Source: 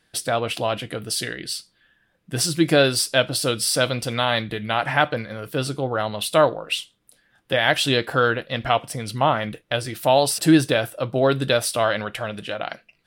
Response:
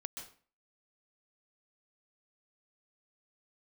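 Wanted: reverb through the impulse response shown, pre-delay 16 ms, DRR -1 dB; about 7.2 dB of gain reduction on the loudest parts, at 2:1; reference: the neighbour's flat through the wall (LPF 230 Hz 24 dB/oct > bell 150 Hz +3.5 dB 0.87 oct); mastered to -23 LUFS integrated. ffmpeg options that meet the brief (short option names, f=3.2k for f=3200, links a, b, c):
-filter_complex "[0:a]acompressor=threshold=-24dB:ratio=2,asplit=2[a][b];[1:a]atrim=start_sample=2205,adelay=16[c];[b][c]afir=irnorm=-1:irlink=0,volume=3.5dB[d];[a][d]amix=inputs=2:normalize=0,lowpass=f=230:w=0.5412,lowpass=f=230:w=1.3066,equalizer=f=150:t=o:w=0.87:g=3.5,volume=6.5dB"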